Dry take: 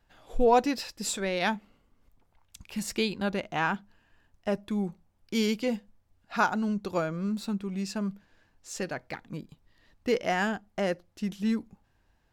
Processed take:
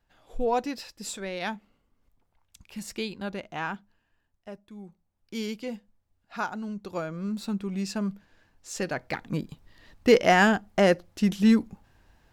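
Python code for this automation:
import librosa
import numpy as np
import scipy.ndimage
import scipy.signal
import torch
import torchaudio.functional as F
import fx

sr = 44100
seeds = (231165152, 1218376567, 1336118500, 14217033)

y = fx.gain(x, sr, db=fx.line((3.71, -4.5), (4.72, -15.0), (5.34, -6.0), (6.7, -6.0), (7.63, 2.0), (8.74, 2.0), (9.35, 8.5)))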